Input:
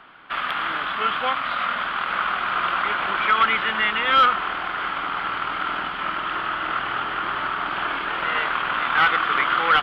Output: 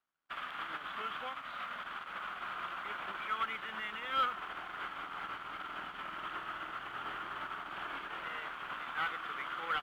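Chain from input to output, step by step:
brickwall limiter −20.5 dBFS, peak gain reduction 11 dB
dead-zone distortion −52.5 dBFS
expander for the loud parts 2.5 to 1, over −47 dBFS
level −3.5 dB

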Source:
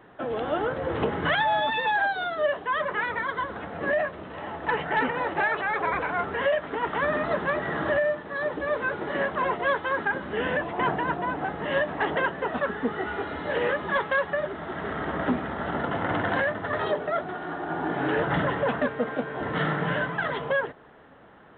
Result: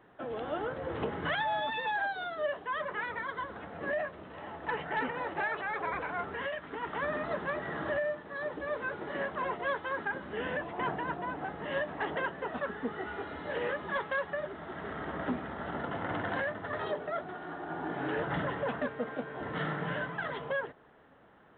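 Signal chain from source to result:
0:06.27–0:06.88: dynamic equaliser 610 Hz, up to −7 dB, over −36 dBFS, Q 1.7
level −8 dB

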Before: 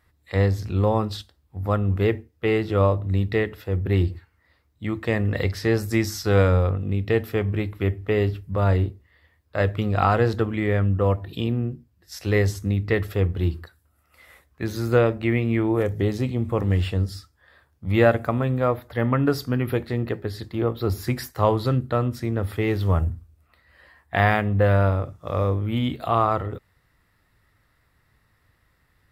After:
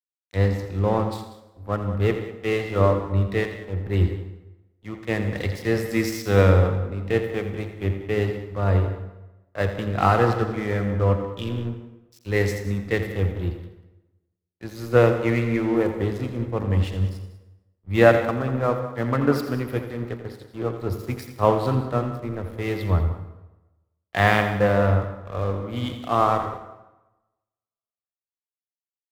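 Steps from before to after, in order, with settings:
pitch vibrato 1.1 Hz 6.1 cents
dead-zone distortion −35 dBFS
on a send: loudspeakers that aren't time-aligned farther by 29 metres −10 dB, 66 metres −12 dB
on the sum: dense smooth reverb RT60 1.8 s, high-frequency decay 0.65×, pre-delay 90 ms, DRR 8.5 dB
multiband upward and downward expander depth 70%
level −1 dB

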